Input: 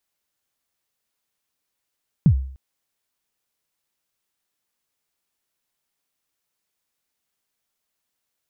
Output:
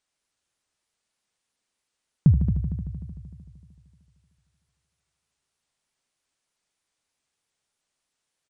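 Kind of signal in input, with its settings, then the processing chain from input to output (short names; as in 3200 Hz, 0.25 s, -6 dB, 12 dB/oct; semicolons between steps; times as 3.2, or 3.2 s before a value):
kick drum length 0.30 s, from 190 Hz, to 66 Hz, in 81 ms, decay 0.55 s, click off, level -7.5 dB
on a send: multi-head echo 76 ms, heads all three, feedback 64%, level -13 dB; on the sum: downsampling 22050 Hz; shaped vibrato saw up 3.2 Hz, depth 160 cents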